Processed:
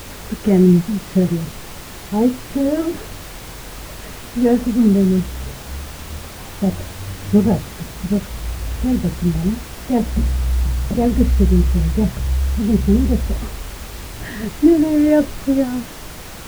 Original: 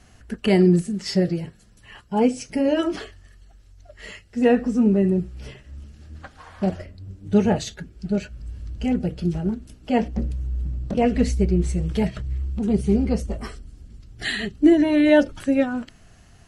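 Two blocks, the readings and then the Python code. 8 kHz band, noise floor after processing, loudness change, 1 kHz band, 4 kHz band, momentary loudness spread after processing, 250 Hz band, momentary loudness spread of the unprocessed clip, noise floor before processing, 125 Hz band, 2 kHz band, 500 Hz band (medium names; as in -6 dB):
+7.5 dB, -34 dBFS, +4.0 dB, +0.5 dB, +1.0 dB, 19 LU, +4.5 dB, 20 LU, -52 dBFS, +7.0 dB, -1.5 dB, +1.5 dB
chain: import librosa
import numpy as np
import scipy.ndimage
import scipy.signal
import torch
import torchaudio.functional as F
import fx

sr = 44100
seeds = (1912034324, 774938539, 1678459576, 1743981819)

y = scipy.signal.sosfilt(scipy.signal.butter(2, 1500.0, 'lowpass', fs=sr, output='sos'), x)
y = fx.low_shelf(y, sr, hz=290.0, db=11.0)
y = fx.dmg_noise_colour(y, sr, seeds[0], colour='pink', level_db=-32.0)
y = y * librosa.db_to_amplitude(-2.0)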